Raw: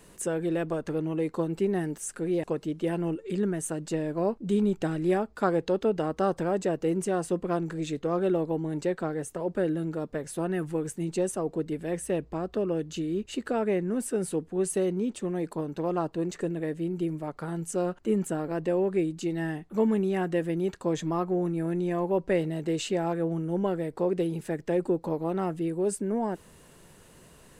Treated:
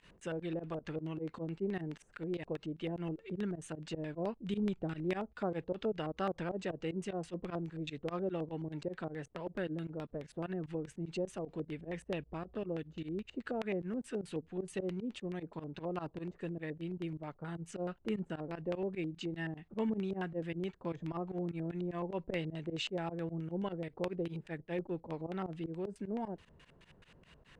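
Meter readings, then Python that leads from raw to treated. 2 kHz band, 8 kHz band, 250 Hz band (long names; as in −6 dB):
−6.5 dB, −19.0 dB, −10.0 dB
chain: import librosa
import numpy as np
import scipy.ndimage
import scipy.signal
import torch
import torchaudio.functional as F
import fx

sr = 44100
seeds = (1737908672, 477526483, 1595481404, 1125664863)

y = fx.dynamic_eq(x, sr, hz=1800.0, q=0.71, threshold_db=-45.0, ratio=4.0, max_db=-4)
y = fx.filter_lfo_lowpass(y, sr, shape='square', hz=4.7, low_hz=600.0, high_hz=2700.0, q=1.3)
y = fx.volume_shaper(y, sr, bpm=152, per_beat=2, depth_db=-21, release_ms=71.0, shape='fast start')
y = fx.tone_stack(y, sr, knobs='5-5-5')
y = y * librosa.db_to_amplitude(9.0)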